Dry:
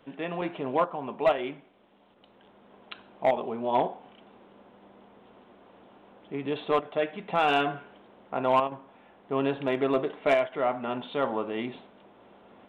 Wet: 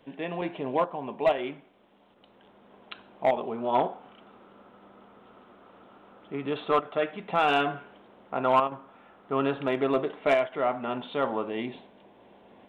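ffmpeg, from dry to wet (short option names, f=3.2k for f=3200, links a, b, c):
-af "asetnsamples=n=441:p=0,asendcmd='1.37 equalizer g 1;3.58 equalizer g 11;7.13 equalizer g 3;8.43 equalizer g 11;9.68 equalizer g 2;11.49 equalizer g -9',equalizer=f=1.3k:t=o:w=0.25:g=-9"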